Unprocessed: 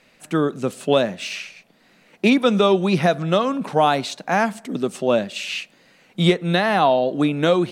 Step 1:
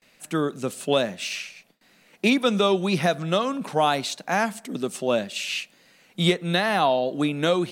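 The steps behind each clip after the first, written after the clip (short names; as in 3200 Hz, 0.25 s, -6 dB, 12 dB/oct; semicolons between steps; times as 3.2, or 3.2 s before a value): pre-emphasis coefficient 0.8; gate with hold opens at -55 dBFS; high shelf 4000 Hz -8 dB; gain +9 dB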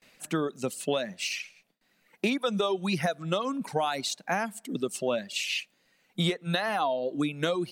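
reverb removal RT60 2 s; compressor 6:1, threshold -24 dBFS, peak gain reduction 9 dB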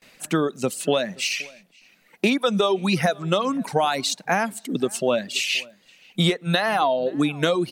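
outdoor echo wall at 90 m, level -24 dB; gain +7 dB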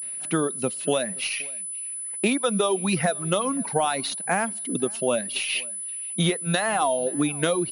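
pulse-width modulation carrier 10000 Hz; gain -2.5 dB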